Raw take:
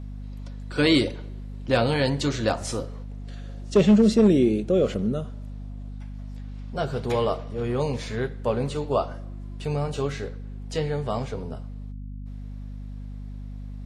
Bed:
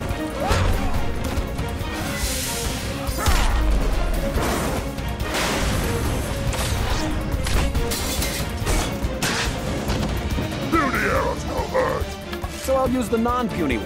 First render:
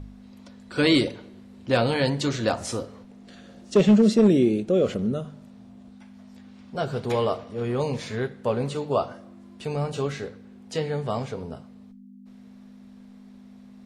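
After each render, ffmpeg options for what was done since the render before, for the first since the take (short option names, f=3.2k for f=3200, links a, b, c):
-af "bandreject=f=50:t=h:w=4,bandreject=f=100:t=h:w=4,bandreject=f=150:t=h:w=4"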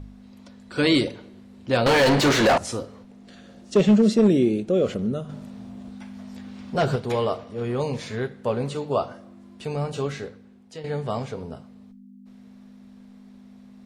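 -filter_complex "[0:a]asettb=1/sr,asplit=3[a][b][c];[a]atrim=end=1.864[d];[b]atrim=start=1.86:end=2.58,asetpts=PTS-STARTPTS,afade=t=in:d=0.004:c=qsin,afade=t=out:st=0.716:d=0.004:c=qsin,asplit=2[e][f];[f]highpass=f=720:p=1,volume=32dB,asoftclip=type=tanh:threshold=-10dB[g];[e][g]amix=inputs=2:normalize=0,lowpass=f=2.4k:p=1,volume=-6dB[h];[c]atrim=start=2.576[i];[d][h]acrossfade=d=0.004:c1=hsin:c2=qsin[j];[j][i]acrossfade=d=0.004:c1=qsin:c2=hsin,asettb=1/sr,asplit=3[k][l][m];[k]atrim=end=5.294[n];[l]atrim=start=5.29:end=6.96,asetpts=PTS-STARTPTS,afade=t=in:d=0.004:c=qsin,afade=t=out:st=1.666:d=0.004:c=qsin,aeval=exprs='0.178*sin(PI/2*1.58*val(0)/0.178)':c=same[o];[m]atrim=start=6.956[p];[n][o]acrossfade=d=0.004:c1=hsin:c2=qsin[q];[q][p]acrossfade=d=0.004:c1=qsin:c2=hsin,asplit=2[r][s];[r]atrim=end=10.84,asetpts=PTS-STARTPTS,afade=t=out:st=10.18:d=0.66:silence=0.237137[t];[s]atrim=start=10.84,asetpts=PTS-STARTPTS,afade=t=in:d=0.004:c=hsin:silence=0.237137[u];[t][u]concat=n=2:v=0:a=1"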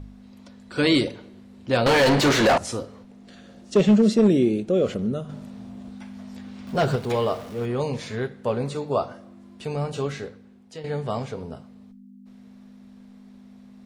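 -filter_complex "[0:a]asettb=1/sr,asplit=3[a][b][c];[a]atrim=end=6.674[d];[b]atrim=start=6.67:end=7.66,asetpts=PTS-STARTPTS,afade=t=in:d=0.004:c=qsin,afade=t=out:st=0.986:d=0.004:c=qsin,aeval=exprs='val(0)+0.5*0.0106*sgn(val(0))':c=same[e];[c]atrim=start=7.656[f];[d][e]acrossfade=d=0.004:c1=hsin:c2=qsin[g];[g][f]acrossfade=d=0.004:c1=qsin:c2=hsin,asettb=1/sr,asplit=3[h][i][j];[h]atrim=end=8.584[k];[i]atrim=start=8.58:end=9.09,asetpts=PTS-STARTPTS,afade=t=in:d=0.004:c=qsin,afade=t=out:st=0.506:d=0.004:c=qsin,bandreject=f=3k:w=6.7[l];[j]atrim=start=9.086[m];[k][l]acrossfade=d=0.004:c1=hsin:c2=qsin[n];[n][m]acrossfade=d=0.004:c1=qsin:c2=hsin"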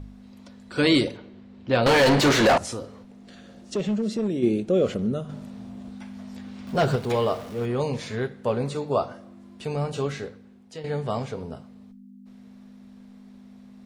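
-filter_complex "[0:a]asettb=1/sr,asplit=3[a][b][c];[a]atrim=end=1.174[d];[b]atrim=start=1.17:end=1.83,asetpts=PTS-STARTPTS,afade=t=in:d=0.004:c=qsin,afade=t=out:st=0.656:d=0.004:c=qsin,lowpass=4.3k[e];[c]atrim=start=1.826[f];[d][e]acrossfade=d=0.004:c1=hsin:c2=qsin[g];[g][f]acrossfade=d=0.004:c1=qsin:c2=hsin,asplit=3[h][i][j];[h]afade=t=out:st=2.64:d=0.02[k];[i]acompressor=threshold=-30dB:ratio=2:attack=3.2:release=140:knee=1:detection=peak,afade=t=in:st=2.64:d=0.02,afade=t=out:st=4.42:d=0.02[l];[j]afade=t=in:st=4.42:d=0.02[m];[k][l][m]amix=inputs=3:normalize=0"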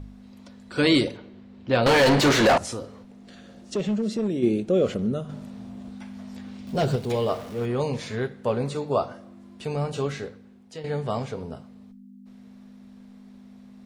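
-filter_complex "[0:a]asettb=1/sr,asplit=3[a][b][c];[a]atrim=end=6.574[d];[b]atrim=start=6.57:end=7.29,asetpts=PTS-STARTPTS,afade=t=in:d=0.004:c=qsin,afade=t=out:st=0.716:d=0.004:c=qsin,equalizer=f=1.3k:t=o:w=1.5:g=-7.5[e];[c]atrim=start=7.286[f];[d][e]acrossfade=d=0.004:c1=hsin:c2=qsin[g];[g][f]acrossfade=d=0.004:c1=qsin:c2=hsin"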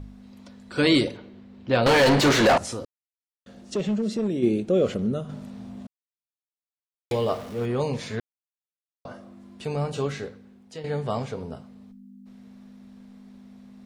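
-filter_complex "[0:a]asplit=7[a][b][c][d][e][f][g];[a]atrim=end=2.85,asetpts=PTS-STARTPTS,afade=t=out:st=2.846:d=0.004:c=hsin[h];[b]atrim=start=2.85:end=3.46,asetpts=PTS-STARTPTS,volume=0[i];[c]atrim=start=3.46:end=5.87,asetpts=PTS-STARTPTS,afade=t=in:d=0.004:c=hsin,afade=t=out:st=2.406:d=0.004:c=hsin[j];[d]atrim=start=5.87:end=7.11,asetpts=PTS-STARTPTS,volume=0[k];[e]atrim=start=7.11:end=8.2,asetpts=PTS-STARTPTS,afade=t=in:d=0.004:c=hsin,afade=t=out:st=1.086:d=0.004:c=hsin[l];[f]atrim=start=8.2:end=9.05,asetpts=PTS-STARTPTS,volume=0[m];[g]atrim=start=9.05,asetpts=PTS-STARTPTS,afade=t=in:d=0.004:c=hsin[n];[h][i][j][k][l][m][n]concat=n=7:v=0:a=1"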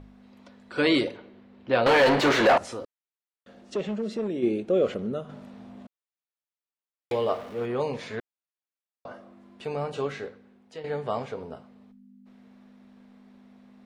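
-af "bass=f=250:g=-10,treble=f=4k:g=-10"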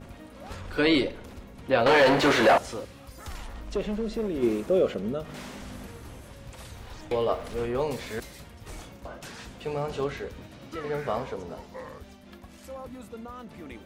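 -filter_complex "[1:a]volume=-20.5dB[a];[0:a][a]amix=inputs=2:normalize=0"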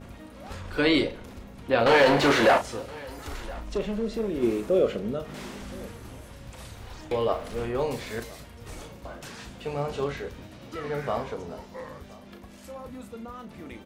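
-filter_complex "[0:a]asplit=2[a][b];[b]adelay=35,volume=-9dB[c];[a][c]amix=inputs=2:normalize=0,aecho=1:1:1020:0.0794"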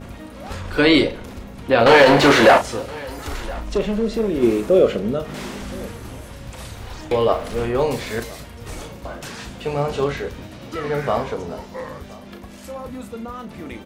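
-af "volume=8dB,alimiter=limit=-3dB:level=0:latency=1"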